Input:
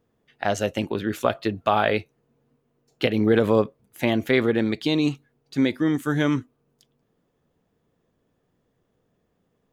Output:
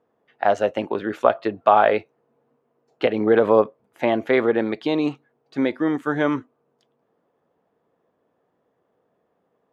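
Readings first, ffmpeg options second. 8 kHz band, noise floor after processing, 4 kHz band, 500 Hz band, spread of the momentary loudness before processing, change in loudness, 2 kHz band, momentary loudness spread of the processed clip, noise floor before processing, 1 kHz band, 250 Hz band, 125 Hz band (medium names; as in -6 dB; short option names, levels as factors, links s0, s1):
no reading, -71 dBFS, -5.0 dB, +4.5 dB, 8 LU, +2.5 dB, +0.5 dB, 10 LU, -72 dBFS, +6.5 dB, -1.0 dB, -7.5 dB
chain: -af "bandpass=f=780:t=q:w=0.94:csg=0,volume=2.24"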